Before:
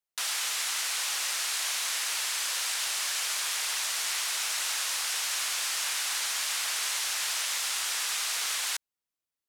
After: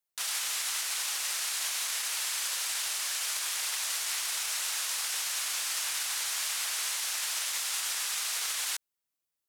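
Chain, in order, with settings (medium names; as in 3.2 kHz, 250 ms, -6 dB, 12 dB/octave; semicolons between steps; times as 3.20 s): treble shelf 7.8 kHz +5.5 dB; peak limiter -23 dBFS, peak gain reduction 7 dB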